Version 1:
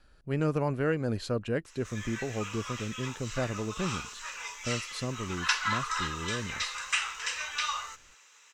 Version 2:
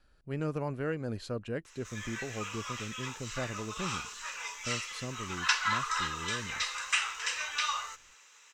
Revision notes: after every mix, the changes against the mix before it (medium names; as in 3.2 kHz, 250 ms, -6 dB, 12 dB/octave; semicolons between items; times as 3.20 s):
speech -5.5 dB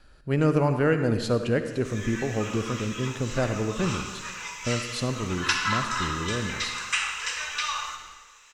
speech +10.0 dB; reverb: on, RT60 1.3 s